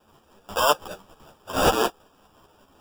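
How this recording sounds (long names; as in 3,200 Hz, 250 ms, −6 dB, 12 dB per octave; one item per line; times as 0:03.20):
aliases and images of a low sample rate 2,100 Hz, jitter 0%
tremolo saw up 5.3 Hz, depth 55%
a shimmering, thickened sound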